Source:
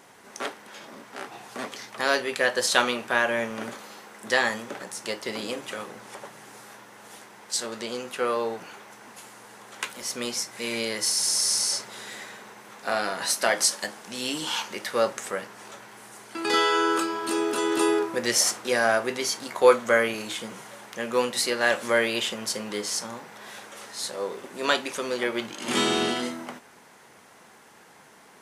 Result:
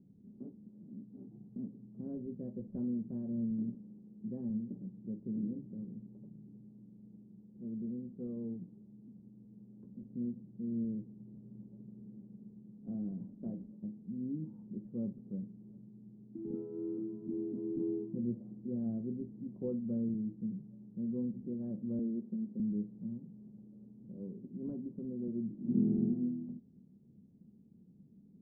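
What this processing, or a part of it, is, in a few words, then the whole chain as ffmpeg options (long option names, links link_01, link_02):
the neighbour's flat through the wall: -filter_complex "[0:a]lowpass=frequency=240:width=0.5412,lowpass=frequency=240:width=1.3066,equalizer=frequency=190:width_type=o:width=0.53:gain=6.5,asettb=1/sr,asplit=3[link_01][link_02][link_03];[link_01]atrim=end=21.994[link_04];[link_02]atrim=start=21.99:end=22.6,asetpts=PTS-STARTPTS,afade=type=in:duration=0.004:curve=qsin,afade=type=out:start_time=0.606:duration=0.004:curve=qsin,highpass=frequency=180:width=0.5412,highpass=frequency=180:width=1.3066[link_05];[link_03]atrim=start=22.596[link_06];[link_04][link_05]acrossfade=duration=0.004:curve1=hsin:curve2=qsin[link_07];[link_07][link_06]acrossfade=duration=0.004:curve1=qsin:curve2=hsin,volume=1dB"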